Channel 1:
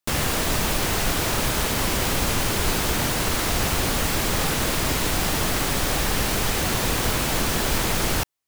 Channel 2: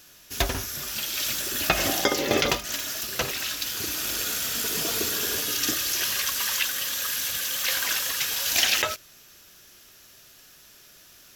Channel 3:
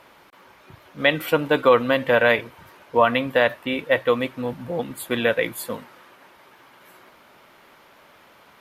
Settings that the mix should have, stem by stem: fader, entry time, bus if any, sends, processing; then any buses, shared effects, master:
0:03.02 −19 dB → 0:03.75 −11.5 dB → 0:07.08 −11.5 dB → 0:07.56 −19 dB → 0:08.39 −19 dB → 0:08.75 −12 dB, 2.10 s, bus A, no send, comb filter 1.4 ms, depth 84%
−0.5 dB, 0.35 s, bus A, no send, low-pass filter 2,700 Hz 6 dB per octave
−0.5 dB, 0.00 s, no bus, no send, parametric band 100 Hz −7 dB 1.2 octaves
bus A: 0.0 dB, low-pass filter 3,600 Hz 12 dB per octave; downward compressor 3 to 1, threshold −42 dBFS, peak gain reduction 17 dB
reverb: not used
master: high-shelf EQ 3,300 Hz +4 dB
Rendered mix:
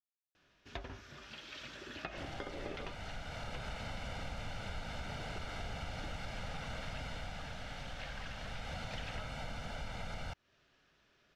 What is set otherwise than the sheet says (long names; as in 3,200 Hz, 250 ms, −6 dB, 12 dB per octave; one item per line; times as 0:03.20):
stem 2 −0.5 dB → −11.5 dB
stem 3: muted
master: missing high-shelf EQ 3,300 Hz +4 dB